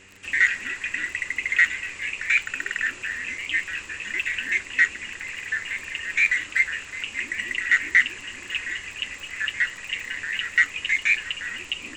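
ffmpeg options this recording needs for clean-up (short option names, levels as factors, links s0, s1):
-af "adeclick=t=4,bandreject=f=95.4:t=h:w=4,bandreject=f=190.8:t=h:w=4,bandreject=f=286.2:t=h:w=4,bandreject=f=381.6:t=h:w=4,bandreject=f=477:t=h:w=4"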